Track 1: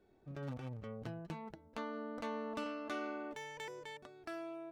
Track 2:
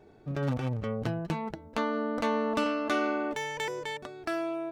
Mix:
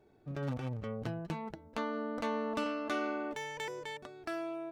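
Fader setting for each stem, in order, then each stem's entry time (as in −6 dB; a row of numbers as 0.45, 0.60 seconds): −3.0, −10.0 decibels; 0.00, 0.00 seconds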